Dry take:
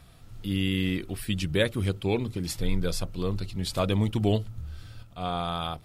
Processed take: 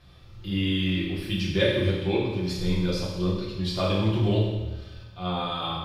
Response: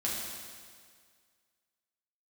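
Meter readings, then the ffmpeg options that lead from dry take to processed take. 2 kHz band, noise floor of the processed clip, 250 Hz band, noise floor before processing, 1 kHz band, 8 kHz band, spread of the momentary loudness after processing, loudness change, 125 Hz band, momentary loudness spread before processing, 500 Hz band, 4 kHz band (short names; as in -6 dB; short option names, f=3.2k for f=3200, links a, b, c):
+2.0 dB, -47 dBFS, +2.5 dB, -51 dBFS, +1.0 dB, -6.5 dB, 9 LU, +2.5 dB, +2.5 dB, 12 LU, +3.0 dB, +3.5 dB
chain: -filter_complex "[0:a]highshelf=f=6.4k:t=q:w=1.5:g=-10[a];[1:a]atrim=start_sample=2205,asetrate=70560,aresample=44100[b];[a][b]afir=irnorm=-1:irlink=0"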